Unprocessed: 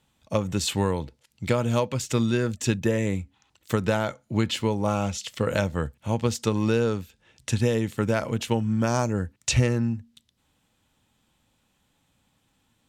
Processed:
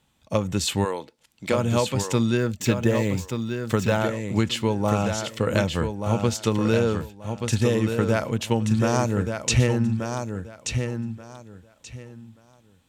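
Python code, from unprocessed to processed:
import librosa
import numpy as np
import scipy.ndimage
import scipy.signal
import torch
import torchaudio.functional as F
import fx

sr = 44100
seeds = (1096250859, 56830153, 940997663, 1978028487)

p1 = fx.highpass(x, sr, hz=fx.line((0.84, 450.0), (1.56, 210.0)), slope=12, at=(0.84, 1.56), fade=0.02)
p2 = p1 + fx.echo_feedback(p1, sr, ms=1181, feedback_pct=21, wet_db=-6.5, dry=0)
p3 = fx.resample_linear(p2, sr, factor=2, at=(2.37, 3.98))
y = p3 * 10.0 ** (1.5 / 20.0)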